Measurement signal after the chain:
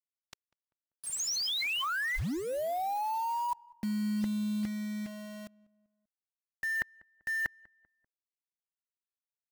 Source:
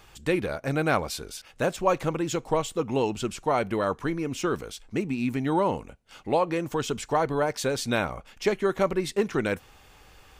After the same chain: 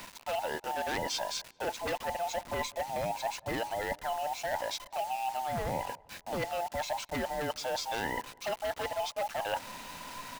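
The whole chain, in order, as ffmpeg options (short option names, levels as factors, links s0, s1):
-filter_complex "[0:a]afftfilt=real='real(if(between(b,1,1008),(2*floor((b-1)/48)+1)*48-b,b),0)':imag='imag(if(between(b,1,1008),(2*floor((b-1)/48)+1)*48-b,b),0)*if(between(b,1,1008),-1,1)':win_size=2048:overlap=0.75,lowpass=f=6600:w=0.5412,lowpass=f=6600:w=1.3066,acontrast=29,aeval=exprs='0.211*(abs(mod(val(0)/0.211+3,4)-2)-1)':c=same,areverse,acompressor=threshold=0.0224:ratio=12,areverse,acrusher=bits=7:mix=0:aa=0.000001,equalizer=f=420:w=4.2:g=-5,asplit=2[s0][s1];[s1]adelay=195,lowpass=f=1400:p=1,volume=0.0708,asplit=2[s2][s3];[s3]adelay=195,lowpass=f=1400:p=1,volume=0.5,asplit=2[s4][s5];[s5]adelay=195,lowpass=f=1400:p=1,volume=0.5[s6];[s0][s2][s4][s6]amix=inputs=4:normalize=0,volume=1.33"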